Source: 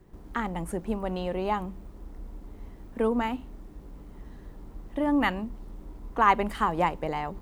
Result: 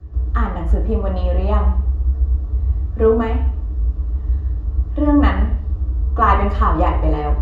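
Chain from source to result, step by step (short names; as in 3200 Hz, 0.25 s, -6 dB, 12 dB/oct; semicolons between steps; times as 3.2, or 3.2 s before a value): resonant low shelf 110 Hz +14 dB, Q 1.5; reverb RT60 0.60 s, pre-delay 3 ms, DRR -3 dB; gain -6.5 dB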